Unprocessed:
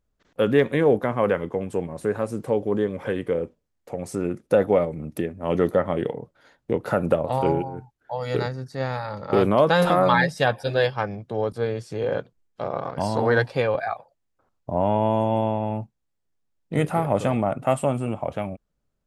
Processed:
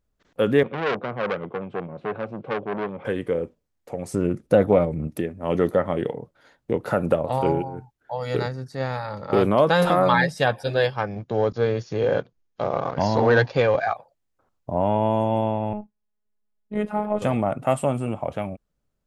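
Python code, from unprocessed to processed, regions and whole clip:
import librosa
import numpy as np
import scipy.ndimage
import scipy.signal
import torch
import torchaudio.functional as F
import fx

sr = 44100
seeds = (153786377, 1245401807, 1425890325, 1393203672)

y = fx.chain(x, sr, fx.clip_hard(threshold_db=-13.0),
    fx.cabinet(low_hz=110.0, low_slope=24, high_hz=3000.0, hz=(280.0, 950.0, 1800.0), db=(-5, -7, -10)),
    fx.transformer_sat(knee_hz=1500.0), at=(0.63, 3.05))
y = fx.chain(y, sr, fx.low_shelf(hz=210.0, db=9.0),
    fx.doppler_dist(depth_ms=0.12), at=(4.14, 5.08))
y = fx.chain(y, sr, fx.leveller(passes=1),
    fx.brickwall_lowpass(high_hz=7000.0), at=(11.16, 13.93))
y = fx.chain(y, sr, fx.lowpass(hz=1600.0, slope=6),
    fx.robotise(hz=210.0), at=(15.73, 17.22))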